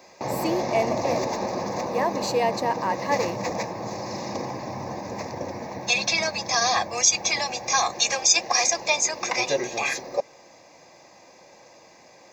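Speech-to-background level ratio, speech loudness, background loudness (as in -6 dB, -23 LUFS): -2.5 dB, -27.5 LUFS, -25.0 LUFS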